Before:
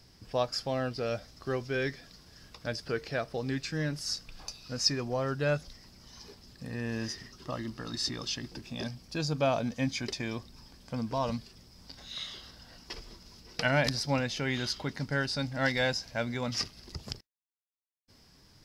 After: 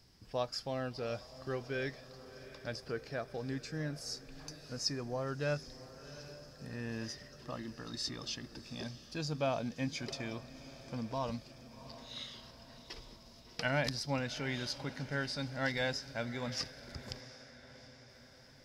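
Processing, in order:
0:02.77–0:05.27: dynamic equaliser 3,000 Hz, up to −6 dB, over −49 dBFS, Q 1.1
feedback delay with all-pass diffusion 723 ms, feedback 57%, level −15 dB
level −6 dB

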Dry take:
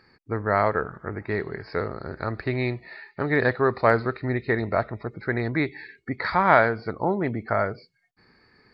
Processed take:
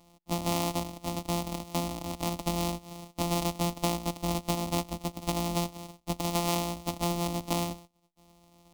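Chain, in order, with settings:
samples sorted by size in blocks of 256 samples
phaser with its sweep stopped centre 430 Hz, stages 6
downward compressor 6 to 1, threshold −28 dBFS, peak gain reduction 12.5 dB
level +2.5 dB

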